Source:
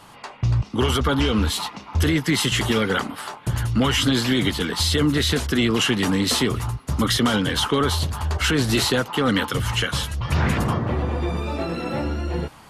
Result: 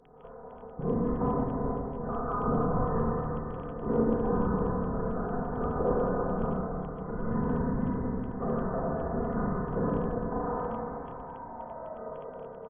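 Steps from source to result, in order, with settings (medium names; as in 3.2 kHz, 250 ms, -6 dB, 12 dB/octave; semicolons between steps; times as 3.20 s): steep high-pass 2.4 kHz 48 dB/octave; comb 3.9 ms, depth 73%; peak limiter -17 dBFS, peak gain reduction 8.5 dB; Schroeder reverb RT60 3.2 s, combs from 27 ms, DRR -7 dB; crackle 13 per s -34 dBFS; frequency inversion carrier 3.3 kHz; trim -3.5 dB; AAC 32 kbps 32 kHz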